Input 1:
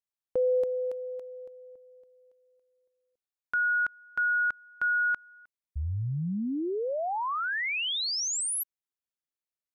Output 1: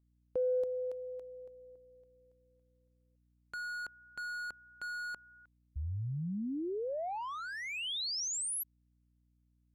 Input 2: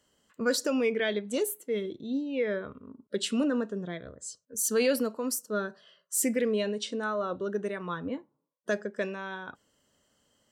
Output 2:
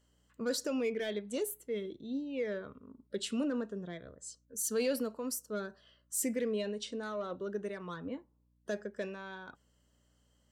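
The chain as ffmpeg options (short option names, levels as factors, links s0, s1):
-filter_complex "[0:a]acrossover=split=810|3000[s0][s1][s2];[s1]asoftclip=type=tanh:threshold=0.015[s3];[s0][s3][s2]amix=inputs=3:normalize=0,aeval=exprs='val(0)+0.000562*(sin(2*PI*60*n/s)+sin(2*PI*2*60*n/s)/2+sin(2*PI*3*60*n/s)/3+sin(2*PI*4*60*n/s)/4+sin(2*PI*5*60*n/s)/5)':c=same,volume=0.501"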